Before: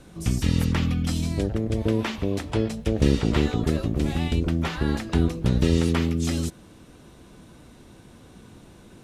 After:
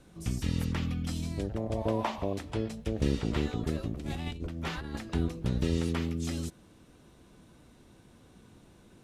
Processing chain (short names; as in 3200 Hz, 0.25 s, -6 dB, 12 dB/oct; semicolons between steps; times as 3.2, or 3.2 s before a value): 1.57–2.33 band shelf 780 Hz +13 dB 1.2 oct; 3.96–4.96 negative-ratio compressor -26 dBFS, ratio -0.5; gain -8.5 dB